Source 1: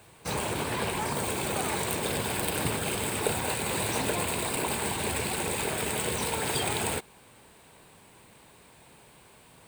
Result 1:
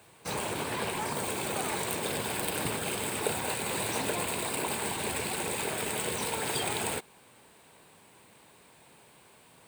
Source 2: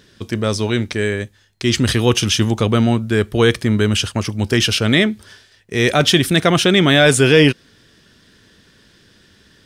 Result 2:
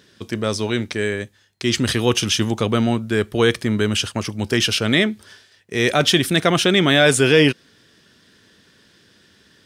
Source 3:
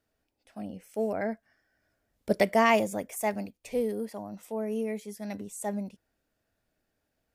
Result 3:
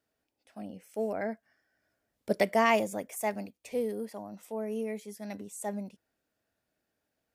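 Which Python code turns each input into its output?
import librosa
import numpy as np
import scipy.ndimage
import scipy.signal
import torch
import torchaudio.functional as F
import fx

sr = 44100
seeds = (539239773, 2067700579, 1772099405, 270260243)

y = fx.highpass(x, sr, hz=140.0, slope=6)
y = y * 10.0 ** (-2.0 / 20.0)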